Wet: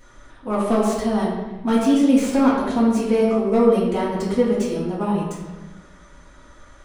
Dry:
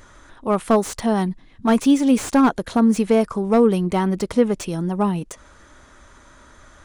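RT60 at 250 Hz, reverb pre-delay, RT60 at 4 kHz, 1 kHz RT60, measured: 1.5 s, 4 ms, 0.85 s, 1.1 s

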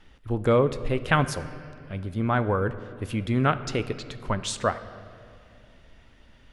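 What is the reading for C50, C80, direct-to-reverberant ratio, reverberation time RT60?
13.0 dB, 14.0 dB, 11.5 dB, 2.4 s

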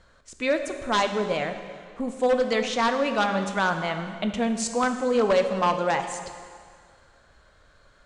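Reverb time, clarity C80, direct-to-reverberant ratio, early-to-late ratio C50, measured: 2.0 s, 9.5 dB, 6.5 dB, 8.0 dB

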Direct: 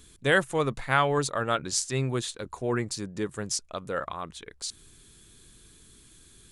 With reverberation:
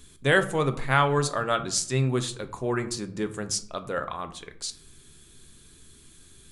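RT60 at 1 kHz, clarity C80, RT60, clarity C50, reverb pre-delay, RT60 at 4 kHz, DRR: 0.60 s, 18.0 dB, 0.60 s, 14.5 dB, 5 ms, 0.35 s, 8.5 dB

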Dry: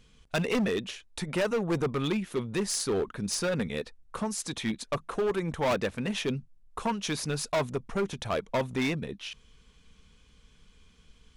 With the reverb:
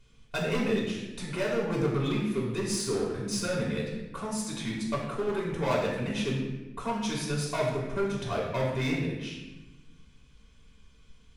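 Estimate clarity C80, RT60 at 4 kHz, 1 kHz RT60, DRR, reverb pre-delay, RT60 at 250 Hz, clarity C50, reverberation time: 4.5 dB, 0.80 s, 0.95 s, −4.0 dB, 3 ms, 1.7 s, 2.0 dB, 1.1 s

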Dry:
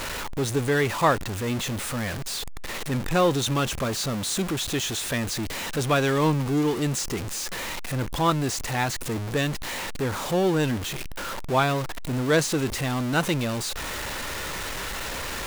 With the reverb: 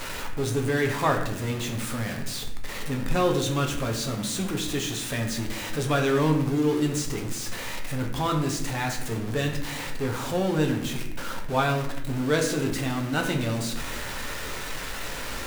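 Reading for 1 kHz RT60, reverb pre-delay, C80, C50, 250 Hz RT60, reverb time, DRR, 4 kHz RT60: 0.70 s, 3 ms, 9.0 dB, 7.0 dB, 1.4 s, 0.85 s, 1.5 dB, 0.55 s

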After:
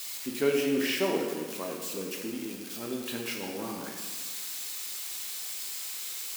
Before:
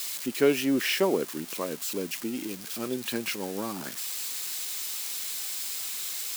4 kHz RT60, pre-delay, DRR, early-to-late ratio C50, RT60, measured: 1.3 s, 11 ms, 0.5 dB, 3.0 dB, 1.6 s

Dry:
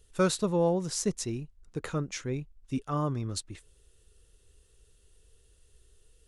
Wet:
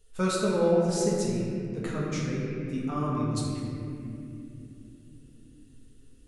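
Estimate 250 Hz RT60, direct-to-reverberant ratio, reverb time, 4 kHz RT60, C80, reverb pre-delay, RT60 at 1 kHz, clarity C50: 5.4 s, −6.0 dB, 3.0 s, 2.0 s, −0.5 dB, 4 ms, 2.3 s, −1.5 dB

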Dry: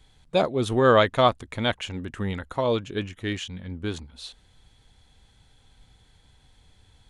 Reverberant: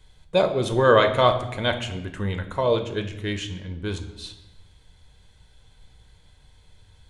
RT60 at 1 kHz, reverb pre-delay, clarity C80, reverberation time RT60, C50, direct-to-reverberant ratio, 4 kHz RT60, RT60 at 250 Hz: 0.80 s, 5 ms, 13.0 dB, 0.90 s, 10.5 dB, 5.5 dB, 0.75 s, 1.2 s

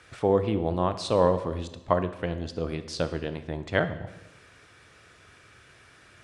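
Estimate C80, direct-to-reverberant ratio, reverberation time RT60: 14.0 dB, 10.5 dB, 1.0 s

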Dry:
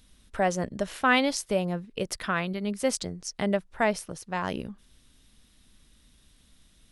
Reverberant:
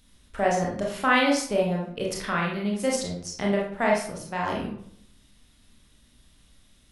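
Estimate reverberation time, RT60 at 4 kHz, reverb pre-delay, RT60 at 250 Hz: 0.65 s, 0.40 s, 24 ms, 0.75 s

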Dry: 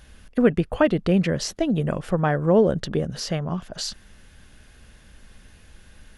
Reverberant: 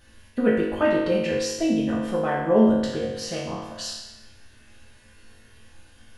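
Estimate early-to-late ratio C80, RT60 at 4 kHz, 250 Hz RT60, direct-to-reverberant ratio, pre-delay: 4.5 dB, 0.95 s, 1.0 s, −6.5 dB, 4 ms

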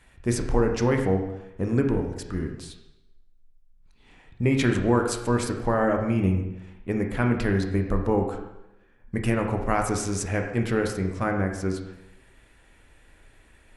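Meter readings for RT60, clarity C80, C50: 0.90 s, 8.0 dB, 6.0 dB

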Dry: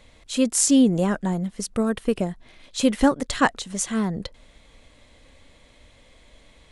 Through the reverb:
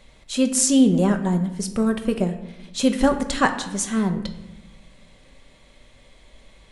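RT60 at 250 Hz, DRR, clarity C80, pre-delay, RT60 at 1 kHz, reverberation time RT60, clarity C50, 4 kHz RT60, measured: 1.6 s, 6.0 dB, 12.5 dB, 5 ms, 0.90 s, 1.0 s, 11.0 dB, 0.65 s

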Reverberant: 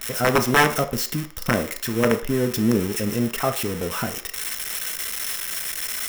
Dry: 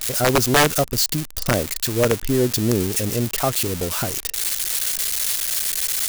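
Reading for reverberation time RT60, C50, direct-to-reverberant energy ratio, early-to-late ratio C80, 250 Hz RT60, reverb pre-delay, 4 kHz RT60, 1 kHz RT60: 0.50 s, 13.5 dB, 7.0 dB, 17.5 dB, 0.40 s, 3 ms, 0.60 s, 0.55 s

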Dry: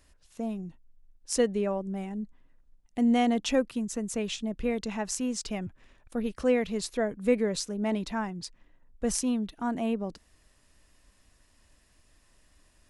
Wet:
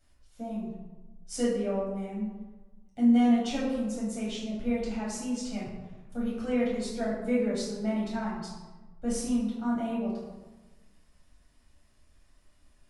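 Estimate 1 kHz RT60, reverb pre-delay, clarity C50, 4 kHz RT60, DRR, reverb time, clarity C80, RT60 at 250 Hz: 1.2 s, 3 ms, 1.0 dB, 0.70 s, −7.5 dB, 1.2 s, 3.5 dB, 1.4 s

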